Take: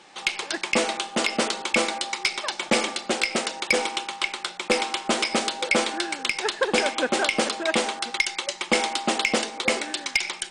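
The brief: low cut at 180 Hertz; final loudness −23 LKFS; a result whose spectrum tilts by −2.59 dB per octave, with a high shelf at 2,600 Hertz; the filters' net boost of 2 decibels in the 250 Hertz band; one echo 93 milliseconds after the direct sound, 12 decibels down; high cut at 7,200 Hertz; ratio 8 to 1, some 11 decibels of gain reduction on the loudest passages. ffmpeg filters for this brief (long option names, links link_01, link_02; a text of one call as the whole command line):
ffmpeg -i in.wav -af "highpass=180,lowpass=7200,equalizer=frequency=250:width_type=o:gain=4,highshelf=frequency=2600:gain=-8.5,acompressor=threshold=-29dB:ratio=8,aecho=1:1:93:0.251,volume=10.5dB" out.wav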